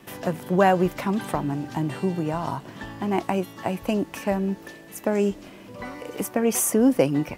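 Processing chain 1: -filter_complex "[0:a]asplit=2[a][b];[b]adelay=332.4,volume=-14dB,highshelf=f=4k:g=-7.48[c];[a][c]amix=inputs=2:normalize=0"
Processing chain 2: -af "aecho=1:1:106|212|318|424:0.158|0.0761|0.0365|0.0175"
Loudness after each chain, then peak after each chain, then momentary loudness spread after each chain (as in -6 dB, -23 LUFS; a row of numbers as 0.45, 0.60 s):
-24.5, -24.5 LUFS; -5.5, -5.5 dBFS; 16, 16 LU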